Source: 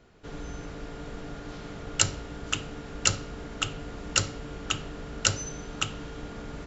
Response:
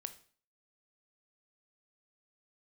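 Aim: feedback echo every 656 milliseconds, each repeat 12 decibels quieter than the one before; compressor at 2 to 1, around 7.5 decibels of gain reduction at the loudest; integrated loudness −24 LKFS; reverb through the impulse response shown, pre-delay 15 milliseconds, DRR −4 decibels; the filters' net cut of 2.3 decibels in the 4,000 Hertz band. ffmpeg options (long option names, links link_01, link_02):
-filter_complex "[0:a]equalizer=frequency=4000:width_type=o:gain=-3.5,acompressor=threshold=-32dB:ratio=2,aecho=1:1:656|1312|1968:0.251|0.0628|0.0157,asplit=2[link_01][link_02];[1:a]atrim=start_sample=2205,adelay=15[link_03];[link_02][link_03]afir=irnorm=-1:irlink=0,volume=7dB[link_04];[link_01][link_04]amix=inputs=2:normalize=0,volume=7.5dB"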